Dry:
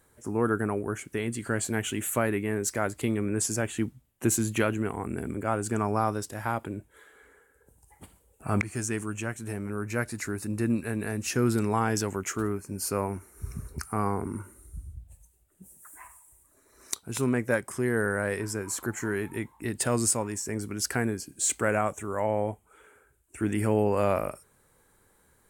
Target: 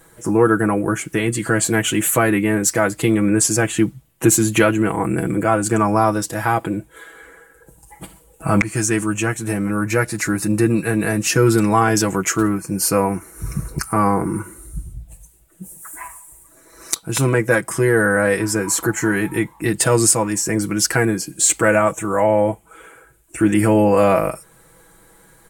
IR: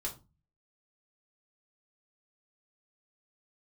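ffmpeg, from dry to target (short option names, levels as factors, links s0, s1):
-filter_complex "[0:a]aecho=1:1:6.1:0.78,asplit=2[s0][s1];[s1]alimiter=limit=0.0944:level=0:latency=1:release=415,volume=0.891[s2];[s0][s2]amix=inputs=2:normalize=0,volume=2.11"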